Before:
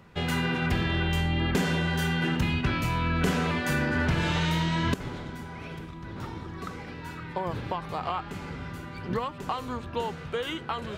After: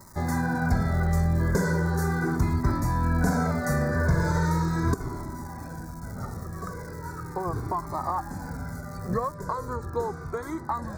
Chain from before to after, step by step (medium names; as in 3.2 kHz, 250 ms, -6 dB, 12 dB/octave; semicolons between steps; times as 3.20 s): crackle 320 per s -36 dBFS, from 9.32 s 47 per s; Butterworth band-stop 2.9 kHz, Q 0.76; Shepard-style flanger falling 0.38 Hz; trim +7 dB